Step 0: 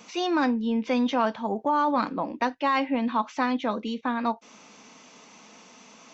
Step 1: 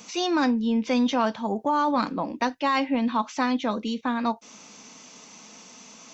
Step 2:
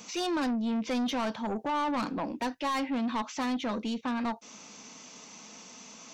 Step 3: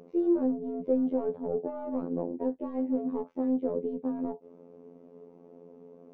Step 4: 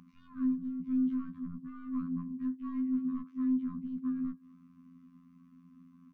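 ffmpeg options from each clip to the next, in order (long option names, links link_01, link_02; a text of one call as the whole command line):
ffmpeg -i in.wav -af "bass=frequency=250:gain=4,treble=frequency=4000:gain=9" out.wav
ffmpeg -i in.wav -af "asoftclip=type=tanh:threshold=-25dB,volume=-1.5dB" out.wav
ffmpeg -i in.wav -af "lowpass=frequency=450:width_type=q:width=4.9,afftfilt=real='hypot(re,im)*cos(PI*b)':imag='0':win_size=2048:overlap=0.75,volume=1.5dB" out.wav
ffmpeg -i in.wav -filter_complex "[0:a]asplit=2[link_01][link_02];[link_02]adelay=210,highpass=300,lowpass=3400,asoftclip=type=hard:threshold=-23.5dB,volume=-25dB[link_03];[link_01][link_03]amix=inputs=2:normalize=0,afftfilt=real='re*(1-between(b*sr/4096,260,1000))':imag='im*(1-between(b*sr/4096,260,1000))':win_size=4096:overlap=0.75" out.wav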